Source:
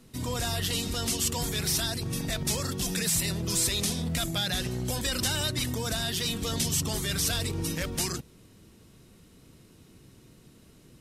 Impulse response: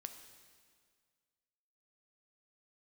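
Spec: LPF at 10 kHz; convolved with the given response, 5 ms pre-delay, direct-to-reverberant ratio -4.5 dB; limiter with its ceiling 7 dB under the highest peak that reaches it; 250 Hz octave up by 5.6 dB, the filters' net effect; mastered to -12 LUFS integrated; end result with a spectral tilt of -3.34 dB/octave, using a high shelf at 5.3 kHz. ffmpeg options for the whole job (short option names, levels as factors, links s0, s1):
-filter_complex "[0:a]lowpass=10000,equalizer=f=250:t=o:g=7.5,highshelf=f=5300:g=5,alimiter=limit=0.1:level=0:latency=1,asplit=2[s0][s1];[1:a]atrim=start_sample=2205,adelay=5[s2];[s1][s2]afir=irnorm=-1:irlink=0,volume=2.82[s3];[s0][s3]amix=inputs=2:normalize=0,volume=3.55"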